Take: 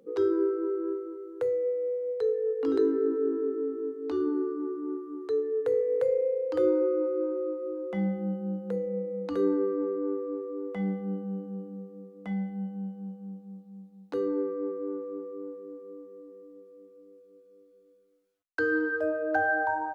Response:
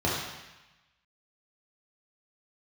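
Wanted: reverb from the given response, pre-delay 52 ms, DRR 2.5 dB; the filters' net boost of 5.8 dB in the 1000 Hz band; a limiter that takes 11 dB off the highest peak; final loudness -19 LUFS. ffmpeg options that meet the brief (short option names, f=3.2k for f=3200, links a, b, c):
-filter_complex "[0:a]equalizer=f=1k:t=o:g=8,alimiter=limit=-21.5dB:level=0:latency=1,asplit=2[a][b];[1:a]atrim=start_sample=2205,adelay=52[c];[b][c]afir=irnorm=-1:irlink=0,volume=-15dB[d];[a][d]amix=inputs=2:normalize=0,volume=7dB"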